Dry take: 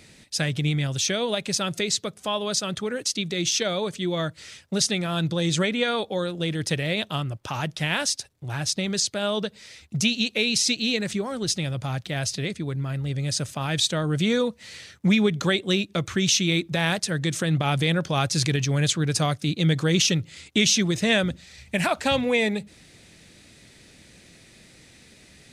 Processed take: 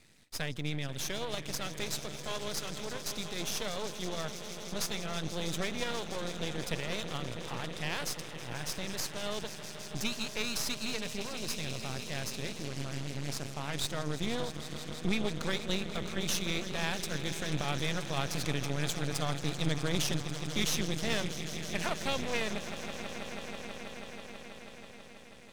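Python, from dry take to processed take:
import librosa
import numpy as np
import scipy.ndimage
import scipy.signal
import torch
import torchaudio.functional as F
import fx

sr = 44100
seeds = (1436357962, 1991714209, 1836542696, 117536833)

y = fx.echo_swell(x, sr, ms=162, loudest=5, wet_db=-14)
y = np.maximum(y, 0.0)
y = fx.doppler_dist(y, sr, depth_ms=0.47, at=(12.63, 13.73))
y = F.gain(torch.from_numpy(y), -8.0).numpy()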